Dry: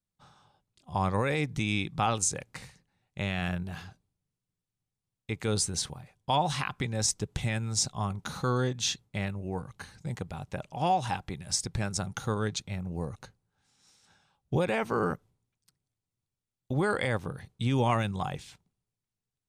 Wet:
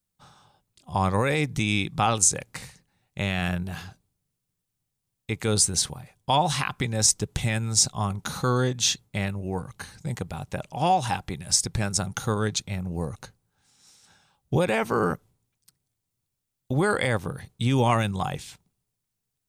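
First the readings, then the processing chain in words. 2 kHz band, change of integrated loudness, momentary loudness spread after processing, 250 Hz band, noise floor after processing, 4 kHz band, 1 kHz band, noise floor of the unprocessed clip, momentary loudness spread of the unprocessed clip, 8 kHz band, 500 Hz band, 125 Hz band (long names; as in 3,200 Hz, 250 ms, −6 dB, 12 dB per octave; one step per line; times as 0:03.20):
+5.0 dB, +5.5 dB, 13 LU, +4.5 dB, −82 dBFS, +6.5 dB, +4.5 dB, below −85 dBFS, 12 LU, +8.5 dB, +4.5 dB, +4.5 dB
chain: high-shelf EQ 7,900 Hz +9 dB
level +4.5 dB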